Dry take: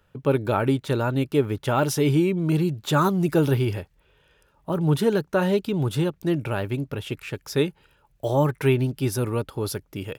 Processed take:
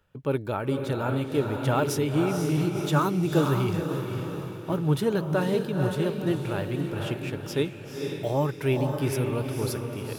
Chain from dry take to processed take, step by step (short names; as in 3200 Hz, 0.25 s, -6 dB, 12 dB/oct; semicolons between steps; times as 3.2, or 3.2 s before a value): diffused feedback echo 0.496 s, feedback 48%, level -4.5 dB; noise-modulated level, depth 50%; gain -2 dB